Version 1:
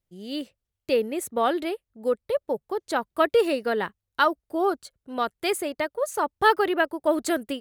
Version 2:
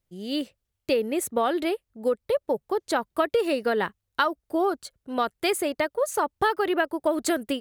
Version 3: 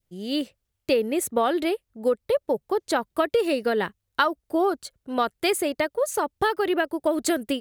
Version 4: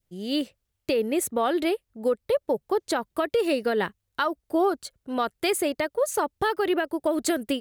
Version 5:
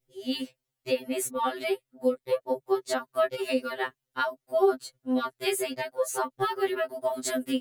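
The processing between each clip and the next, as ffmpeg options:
-af "acompressor=threshold=-23dB:ratio=6,volume=3.5dB"
-af "adynamicequalizer=threshold=0.0126:dfrequency=1100:dqfactor=0.99:tfrequency=1100:tqfactor=0.99:attack=5:release=100:ratio=0.375:range=2.5:mode=cutabove:tftype=bell,volume=2dB"
-af "alimiter=limit=-14.5dB:level=0:latency=1:release=84"
-af "afftfilt=real='re*2.45*eq(mod(b,6),0)':imag='im*2.45*eq(mod(b,6),0)':win_size=2048:overlap=0.75"

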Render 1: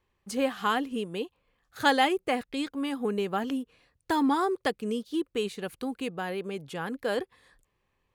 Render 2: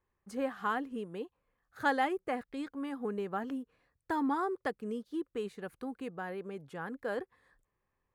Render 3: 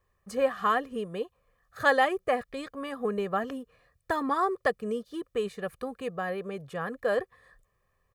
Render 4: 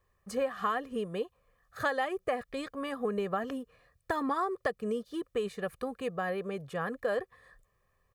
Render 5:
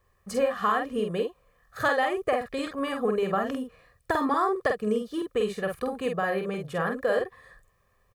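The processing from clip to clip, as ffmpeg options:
-af "highshelf=f=2.2k:t=q:w=1.5:g=-7,volume=-7dB"
-af "aecho=1:1:1.7:0.63,volume=6.5dB"
-af "acompressor=threshold=-27dB:ratio=6"
-filter_complex "[0:a]asplit=2[a][b];[b]adelay=47,volume=-4.5dB[c];[a][c]amix=inputs=2:normalize=0,volume=5dB"

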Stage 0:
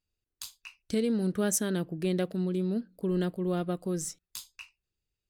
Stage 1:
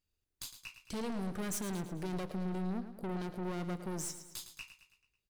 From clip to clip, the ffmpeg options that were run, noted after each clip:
-af "aeval=exprs='(tanh(70.8*val(0)+0.4)-tanh(0.4))/70.8':c=same,aecho=1:1:109|218|327|436|545:0.282|0.141|0.0705|0.0352|0.0176,volume=1dB"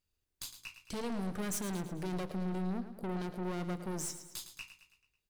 -af "bandreject=f=55.17:t=h:w=4,bandreject=f=110.34:t=h:w=4,bandreject=f=165.51:t=h:w=4,bandreject=f=220.68:t=h:w=4,bandreject=f=275.85:t=h:w=4,bandreject=f=331.02:t=h:w=4,bandreject=f=386.19:t=h:w=4,volume=1dB"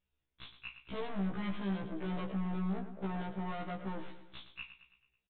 -af "aresample=8000,volume=34dB,asoftclip=hard,volume=-34dB,aresample=44100,afftfilt=real='re*1.73*eq(mod(b,3),0)':imag='im*1.73*eq(mod(b,3),0)':win_size=2048:overlap=0.75,volume=3.5dB"

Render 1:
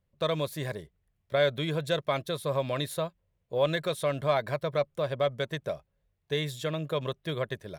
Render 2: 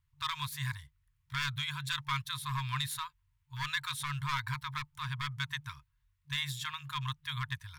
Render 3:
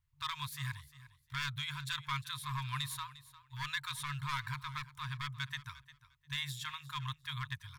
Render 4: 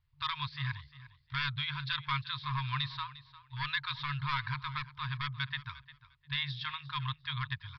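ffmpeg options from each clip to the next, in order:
-af "asoftclip=type=hard:threshold=-22.5dB,afftfilt=real='re*(1-between(b*sr/4096,150,900))':imag='im*(1-between(b*sr/4096,150,900))':win_size=4096:overlap=0.75,volume=1dB"
-af "aecho=1:1:352|704:0.141|0.0268,volume=-3.5dB"
-af "aresample=11025,aresample=44100,volume=4dB"

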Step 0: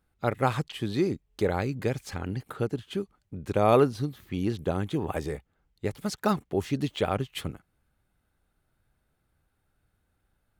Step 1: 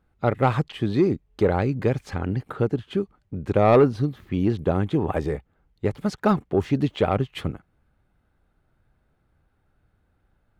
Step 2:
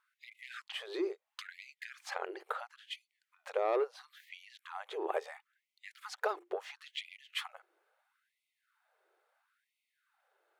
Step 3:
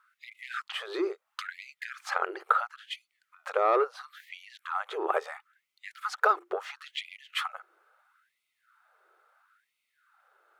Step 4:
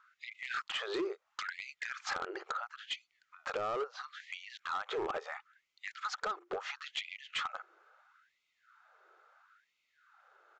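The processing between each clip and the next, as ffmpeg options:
-af "lowpass=f=1.7k:p=1,asoftclip=type=tanh:threshold=-14.5dB,volume=7dB"
-af "acompressor=threshold=-27dB:ratio=10,bandreject=f=50:t=h:w=6,bandreject=f=100:t=h:w=6,bandreject=f=150:t=h:w=6,bandreject=f=200:t=h:w=6,bandreject=f=250:t=h:w=6,bandreject=f=300:t=h:w=6,bandreject=f=350:t=h:w=6,afftfilt=real='re*gte(b*sr/1024,330*pow(2000/330,0.5+0.5*sin(2*PI*0.74*pts/sr)))':imag='im*gte(b*sr/1024,330*pow(2000/330,0.5+0.5*sin(2*PI*0.74*pts/sr)))':win_size=1024:overlap=0.75"
-af "equalizer=f=1.3k:w=2.8:g=12,volume=4.5dB"
-af "acompressor=threshold=-32dB:ratio=8,aresample=16000,asoftclip=type=hard:threshold=-32dB,aresample=44100,volume=1.5dB"

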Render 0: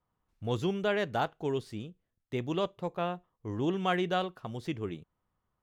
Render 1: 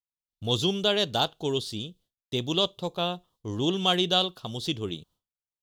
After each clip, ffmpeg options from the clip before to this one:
-af "agate=range=-33dB:threshold=-59dB:ratio=3:detection=peak,highshelf=f=2.7k:t=q:w=3:g=9.5,volume=3.5dB"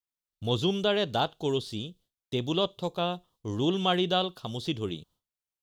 -filter_complex "[0:a]acrossover=split=3000[a][b];[b]acompressor=threshold=-41dB:ratio=4:attack=1:release=60[c];[a][c]amix=inputs=2:normalize=0"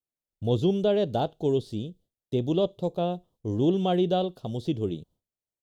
-af "firequalizer=gain_entry='entry(600,0);entry(1100,-14);entry(7900,-10)':delay=0.05:min_phase=1,volume=4dB"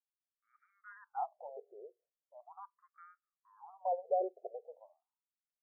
-af "highpass=130,lowpass=2.3k,afftfilt=real='re*between(b*sr/1024,520*pow(1700/520,0.5+0.5*sin(2*PI*0.4*pts/sr))/1.41,520*pow(1700/520,0.5+0.5*sin(2*PI*0.4*pts/sr))*1.41)':imag='im*between(b*sr/1024,520*pow(1700/520,0.5+0.5*sin(2*PI*0.4*pts/sr))/1.41,520*pow(1700/520,0.5+0.5*sin(2*PI*0.4*pts/sr))*1.41)':win_size=1024:overlap=0.75,volume=-5dB"

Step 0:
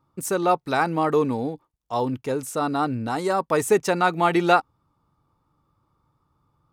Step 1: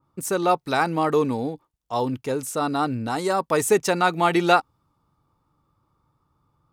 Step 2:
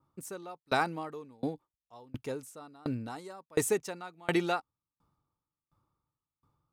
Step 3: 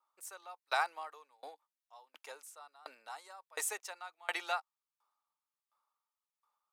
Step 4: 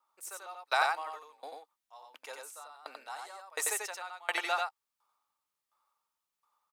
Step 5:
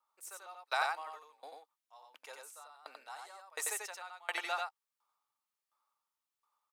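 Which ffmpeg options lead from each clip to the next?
-af "adynamicequalizer=threshold=0.0178:dfrequency=2600:dqfactor=0.7:tfrequency=2600:tqfactor=0.7:attack=5:release=100:ratio=0.375:range=2:mode=boostabove:tftype=highshelf"
-af "aeval=exprs='val(0)*pow(10,-31*if(lt(mod(1.4*n/s,1),2*abs(1.4)/1000),1-mod(1.4*n/s,1)/(2*abs(1.4)/1000),(mod(1.4*n/s,1)-2*abs(1.4)/1000)/(1-2*abs(1.4)/1000))/20)':c=same,volume=-3.5dB"
-af "highpass=f=710:w=0.5412,highpass=f=710:w=1.3066,volume=-2dB"
-af "aecho=1:1:90:0.708,volume=3.5dB"
-af "lowshelf=f=260:g=-6.5,volume=-4.5dB"

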